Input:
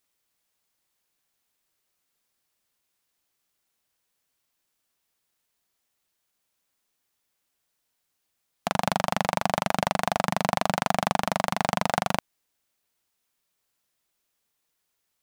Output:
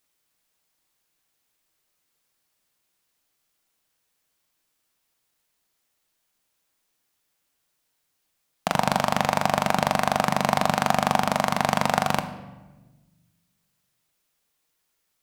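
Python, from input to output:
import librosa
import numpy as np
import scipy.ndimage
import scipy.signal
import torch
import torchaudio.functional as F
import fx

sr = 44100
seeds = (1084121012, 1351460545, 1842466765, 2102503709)

y = fx.room_shoebox(x, sr, seeds[0], volume_m3=760.0, walls='mixed', distance_m=0.55)
y = y * 10.0 ** (2.5 / 20.0)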